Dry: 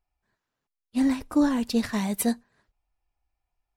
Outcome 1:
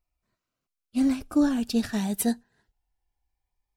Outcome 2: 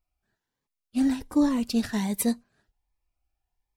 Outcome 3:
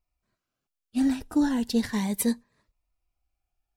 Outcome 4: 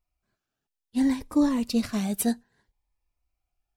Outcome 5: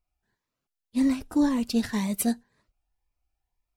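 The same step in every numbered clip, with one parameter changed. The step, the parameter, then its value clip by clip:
phaser whose notches keep moving one way, speed: 0.21, 1.3, 0.36, 0.63, 1.9 Hertz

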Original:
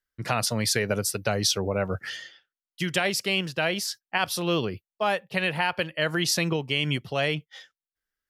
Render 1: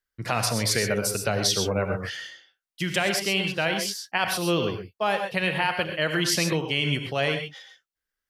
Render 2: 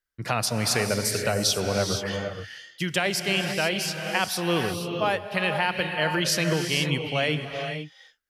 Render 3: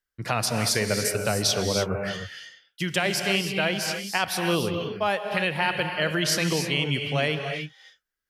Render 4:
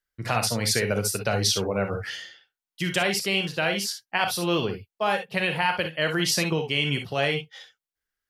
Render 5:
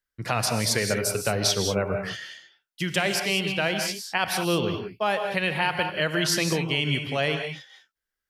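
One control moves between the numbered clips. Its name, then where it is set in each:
reverb whose tail is shaped and stops, gate: 150, 510, 330, 80, 220 milliseconds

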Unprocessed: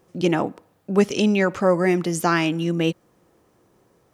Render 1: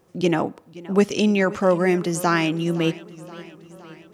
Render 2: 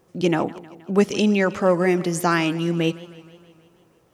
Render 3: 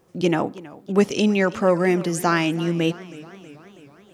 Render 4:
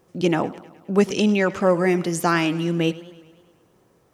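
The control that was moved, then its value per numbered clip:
feedback echo with a swinging delay time, delay time: 520, 157, 325, 104 milliseconds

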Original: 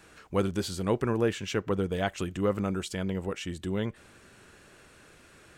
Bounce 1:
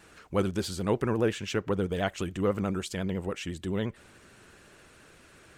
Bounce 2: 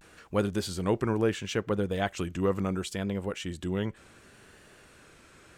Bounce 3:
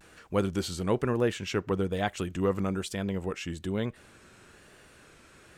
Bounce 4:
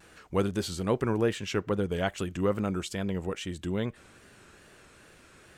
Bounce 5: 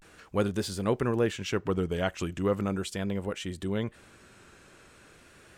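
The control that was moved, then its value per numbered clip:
pitch vibrato, speed: 14, 0.71, 1.1, 2.4, 0.38 Hertz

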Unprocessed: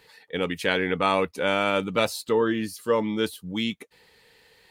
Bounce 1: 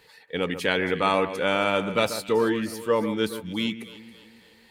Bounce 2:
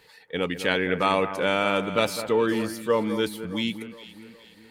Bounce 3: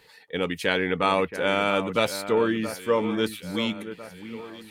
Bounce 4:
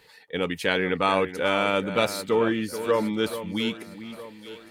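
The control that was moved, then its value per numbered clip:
delay that swaps between a low-pass and a high-pass, delay time: 138, 206, 675, 431 milliseconds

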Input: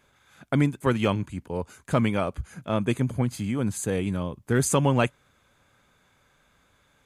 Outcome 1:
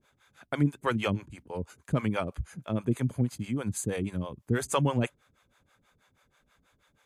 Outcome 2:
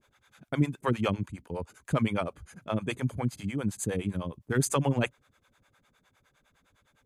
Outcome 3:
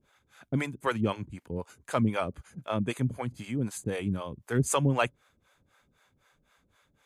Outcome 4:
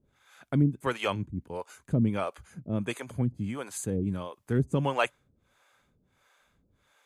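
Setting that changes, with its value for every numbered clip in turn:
two-band tremolo in antiphase, speed: 6.2, 9.8, 3.9, 1.5 Hertz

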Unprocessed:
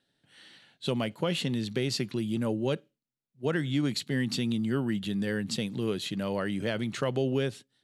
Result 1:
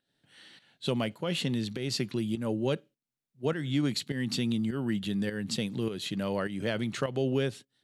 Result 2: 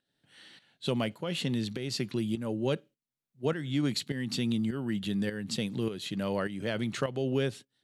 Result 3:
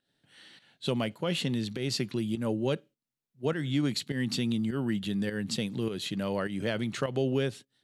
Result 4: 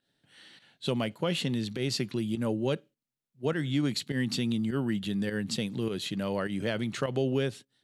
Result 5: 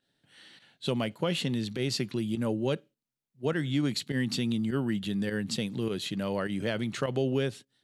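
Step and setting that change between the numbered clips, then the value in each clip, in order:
fake sidechain pumping, release: 264, 489, 178, 99, 66 milliseconds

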